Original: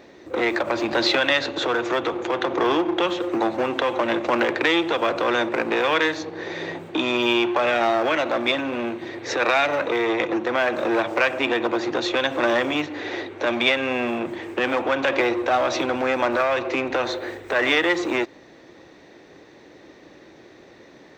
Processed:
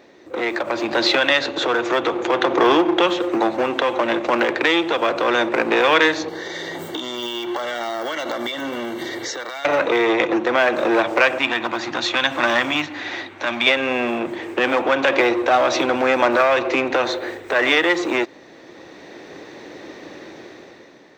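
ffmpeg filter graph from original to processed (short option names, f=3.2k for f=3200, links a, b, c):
-filter_complex "[0:a]asettb=1/sr,asplit=3[a][b][c];[a]atrim=end=6.284[d];[b]atrim=start=6.28:end=9.65,asetpts=PTS-STARTPTS,afade=t=in:d=0.004:c=qsin,afade=t=out:st=3.366:d=0.004:c=qsin,aemphasis=mode=production:type=75fm,acompressor=threshold=-31dB:ratio=16:attack=3.2:release=140:knee=1:detection=peak,asuperstop=centerf=2500:order=20:qfactor=6.5[e];[c]atrim=start=9.646[f];[d][e]acrossfade=d=0.004:c1=hsin:c2=qsin[g];[g][f]acrossfade=d=0.004:c1=qsin:c2=hsin,asettb=1/sr,asplit=3[h][i][j];[h]atrim=end=11.384[k];[i]atrim=start=11.38:end=13.67,asetpts=PTS-STARTPTS,afade=t=in:d=0.004:c=qsin,afade=t=out:st=2.286:d=0.004:c=qsin,highpass=57,equalizer=f=440:t=o:w=0.78:g=-14.5[l];[j]atrim=start=13.666[m];[k][l]acrossfade=d=0.004:c1=hsin:c2=qsin[n];[n][m]acrossfade=d=0.004:c1=qsin:c2=hsin,dynaudnorm=f=140:g=11:m=11.5dB,lowshelf=f=100:g=-11,volume=-1dB"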